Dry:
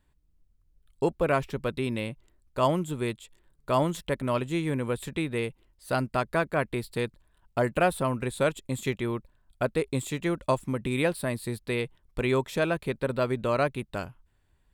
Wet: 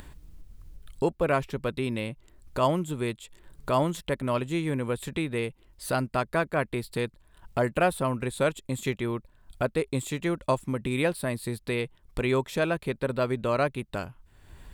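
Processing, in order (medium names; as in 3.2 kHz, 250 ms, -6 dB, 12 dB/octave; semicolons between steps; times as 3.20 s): upward compressor, threshold -28 dBFS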